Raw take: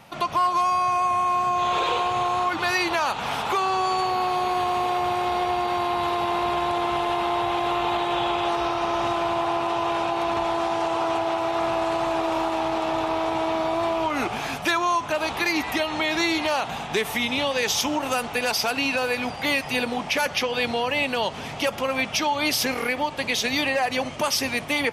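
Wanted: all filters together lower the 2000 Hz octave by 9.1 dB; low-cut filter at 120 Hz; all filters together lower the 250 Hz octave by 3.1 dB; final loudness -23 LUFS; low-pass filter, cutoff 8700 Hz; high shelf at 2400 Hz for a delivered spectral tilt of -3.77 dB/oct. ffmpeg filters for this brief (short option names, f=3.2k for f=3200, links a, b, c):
-af "highpass=120,lowpass=8.7k,equalizer=f=250:t=o:g=-4,equalizer=f=2k:t=o:g=-8.5,highshelf=f=2.4k:g=-6,volume=4.5dB"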